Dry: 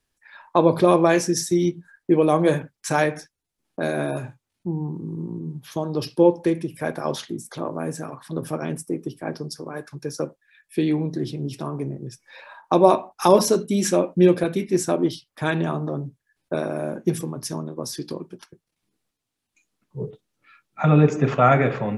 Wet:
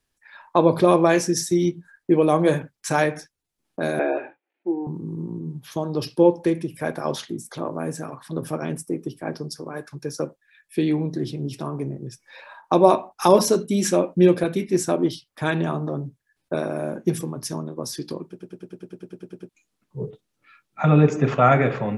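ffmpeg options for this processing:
-filter_complex "[0:a]asettb=1/sr,asplit=3[s0][s1][s2];[s0]atrim=end=3.994[s3];[s1]atrim=start=3.99:end=4.87,asetpts=PTS-STARTPTS,afade=t=in:d=0.004:c=qsin,afade=t=out:st=0.876:d=0.004:c=qsin,highpass=f=330:w=0.5412,highpass=f=330:w=1.3066,equalizer=f=330:t=q:w=4:g=10,equalizer=f=510:t=q:w=4:g=6,equalizer=f=760:t=q:w=4:g=7,equalizer=f=1100:t=q:w=4:g=-5,equalizer=f=1700:t=q:w=4:g=5,equalizer=f=2400:t=q:w=4:g=6,lowpass=f=2800:w=0.5412,lowpass=f=2800:w=1.3066[s4];[s2]atrim=start=4.866[s5];[s3][s4]acrossfade=d=0.004:c1=hsin:c2=qsin[s6];[s6][s5]acrossfade=d=0.004:c1=qsin:c2=hsin,asplit=13[s7][s8][s9][s10][s11][s12][s13][s14][s15][s16][s17][s18][s19];[s7]atrim=end=18.392[s20];[s8]atrim=start=18.288:end=18.392[s21];[s9]atrim=start=18.288:end=18.392[s22];[s10]atrim=start=18.288:end=18.392[s23];[s11]atrim=start=18.288:end=18.392[s24];[s12]atrim=start=18.288:end=18.392[s25];[s13]atrim=start=18.288:end=18.392[s26];[s14]atrim=start=18.288:end=18.392[s27];[s15]atrim=start=18.288:end=18.392[s28];[s16]atrim=start=18.288:end=18.392[s29];[s17]atrim=start=18.288:end=18.392[s30];[s18]atrim=start=18.288:end=18.392[s31];[s19]atrim=start=19.488[s32];[s20][s21]acrossfade=d=0.004:c1=hsin:c2=hsin[s33];[s33][s22]acrossfade=d=0.004:c1=hsin:c2=hsin[s34];[s34][s23]acrossfade=d=0.004:c1=hsin:c2=hsin[s35];[s35][s24]acrossfade=d=0.004:c1=hsin:c2=hsin[s36];[s36][s25]acrossfade=d=0.004:c1=hsin:c2=hsin[s37];[s37][s26]acrossfade=d=0.004:c1=hsin:c2=hsin[s38];[s38][s27]acrossfade=d=0.004:c1=hsin:c2=hsin[s39];[s39][s28]acrossfade=d=0.004:c1=hsin:c2=hsin[s40];[s40][s29]acrossfade=d=0.004:c1=hsin:c2=hsin[s41];[s41][s30]acrossfade=d=0.004:c1=hsin:c2=hsin[s42];[s42][s31]acrossfade=d=0.004:c1=hsin:c2=hsin[s43];[s43][s32]acrossfade=d=0.004:c1=hsin:c2=hsin"

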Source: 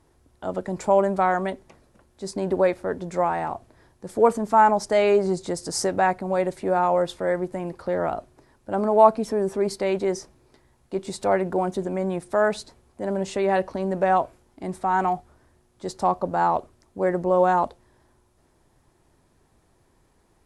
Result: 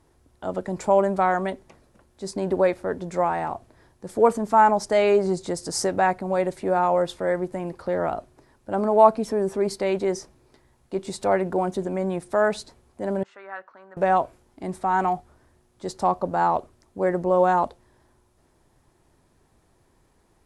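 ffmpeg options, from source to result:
-filter_complex "[0:a]asettb=1/sr,asplit=3[s0][s1][s2];[s0]atrim=end=13.234[s3];[s1]atrim=start=13.23:end=13.97,asetpts=PTS-STARTPTS,afade=t=in:d=0.004:c=qsin,afade=t=out:st=0.736:d=0.004:c=qsin,bandpass=f=1400:t=q:w=4.7[s4];[s2]atrim=start=13.966[s5];[s3][s4]acrossfade=d=0.004:c1=hsin:c2=qsin[s6];[s6][s5]acrossfade=d=0.004:c1=qsin:c2=hsin"

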